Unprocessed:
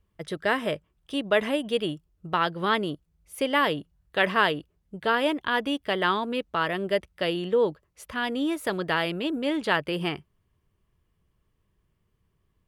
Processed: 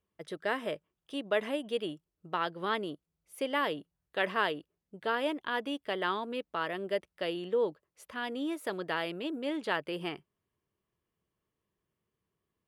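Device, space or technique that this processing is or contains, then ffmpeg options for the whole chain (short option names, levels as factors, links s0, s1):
filter by subtraction: -filter_complex "[0:a]asplit=2[s0][s1];[s1]lowpass=370,volume=-1[s2];[s0][s2]amix=inputs=2:normalize=0,volume=0.376"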